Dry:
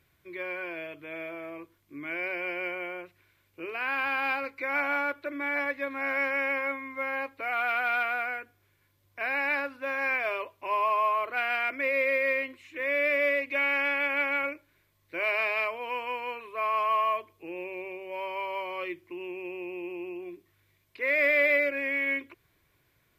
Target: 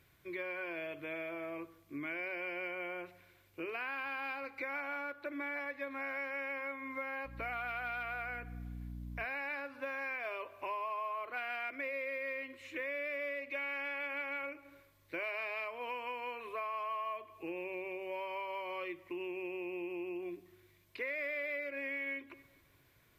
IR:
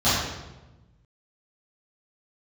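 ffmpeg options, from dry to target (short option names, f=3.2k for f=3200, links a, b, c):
-filter_complex "[0:a]asettb=1/sr,asplit=3[a][b][c];[a]atrim=end=7.254[d];[b]atrim=start=7.25:end=9.25,asetpts=PTS-STARTPTS,afade=t=in:d=0.004:c=qsin,afade=t=out:st=1.996:d=0.004:c=qsin,aeval=exprs='val(0)+0.00631*(sin(2*PI*60*n/s)+sin(2*PI*2*60*n/s)/2+sin(2*PI*3*60*n/s)/3+sin(2*PI*4*60*n/s)/4+sin(2*PI*5*60*n/s)/5)':c=same[e];[c]atrim=start=9.246[f];[d][e]acrossfade=d=0.004:c1=hsin:c2=qsin[g];[g][f]acrossfade=d=0.004:c1=qsin:c2=hsin,asplit=2[h][i];[1:a]atrim=start_sample=2205[j];[i][j]afir=irnorm=-1:irlink=0,volume=-37.5dB[k];[h][k]amix=inputs=2:normalize=0,acompressor=threshold=-39dB:ratio=5,volume=1dB"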